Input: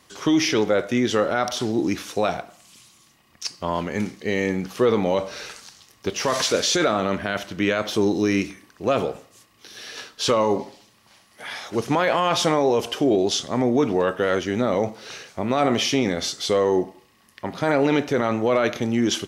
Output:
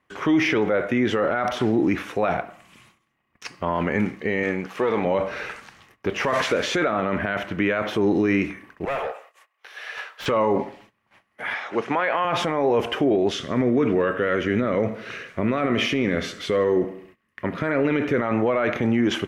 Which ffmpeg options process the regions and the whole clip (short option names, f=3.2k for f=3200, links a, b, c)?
-filter_complex "[0:a]asettb=1/sr,asplit=3[a][b][c];[a]atrim=end=4.434[d];[b]atrim=start=4.43:end=5.05,asetpts=PTS-STARTPTS,afade=t=in:d=0.004:c=qsin,afade=t=out:st=0.616:d=0.004:c=qsin,aeval=exprs='if(lt(val(0),0),0.447*val(0),val(0))':c=same,highpass=f=330:p=1,equalizer=f=5.9k:t=o:w=1.6:g=5.5[e];[c]atrim=start=5.046[f];[d][e]acrossfade=d=0.004:c1=hsin:c2=qsin[g];[g][f]acrossfade=d=0.004:c1=qsin:c2=hsin,asettb=1/sr,asplit=3[h][i][j];[h]atrim=end=8.854[k];[i]atrim=start=8.85:end=10.26,asetpts=PTS-STARTPTS,afade=t=in:d=0.004:c=qsin,afade=t=out:st=1.406:d=0.004:c=qsin,highpass=f=570:w=0.5412,highpass=f=570:w=1.3066,volume=29dB,asoftclip=hard,volume=-29dB[l];[j]atrim=start=10.256[m];[k][l]acrossfade=d=0.004:c1=hsin:c2=qsin[n];[n][m]acrossfade=d=0.004:c1=qsin:c2=hsin,asettb=1/sr,asplit=3[o][p][q];[o]atrim=end=11.544[r];[p]atrim=start=11.54:end=12.25,asetpts=PTS-STARTPTS,afade=t=in:d=0.004:c=qsin,afade=t=out:st=0.706:d=0.004:c=qsin,highpass=160,lowpass=6.5k,lowshelf=f=390:g=-9.5,acompressor=mode=upward:threshold=-36dB:ratio=2.5:attack=3.2:release=140:knee=2.83:detection=peak[s];[q]atrim=start=12.246[t];[r][s]acrossfade=d=0.004:c1=hsin:c2=qsin[u];[u][t]acrossfade=d=0.004:c1=qsin:c2=hsin,asettb=1/sr,asplit=3[v][w][x];[v]atrim=end=13.314[y];[w]atrim=start=13.31:end=18.22,asetpts=PTS-STARTPTS,afade=t=in:d=0.004:c=qsin,afade=t=out:st=4.906:d=0.004:c=qsin,equalizer=f=810:w=3.1:g=-12.5,aecho=1:1:80|160|240|320:0.141|0.0692|0.0339|0.0166,atrim=end_sample=216531[z];[x]atrim=start=18.216[aa];[y][z]acrossfade=d=0.004:c1=hsin:c2=qsin[ab];[ab][aa]acrossfade=d=0.004:c1=qsin:c2=hsin,agate=range=-18dB:threshold=-52dB:ratio=16:detection=peak,highshelf=f=3.2k:t=q:w=1.5:g=-13.5,alimiter=limit=-17dB:level=0:latency=1:release=24,volume=4.5dB"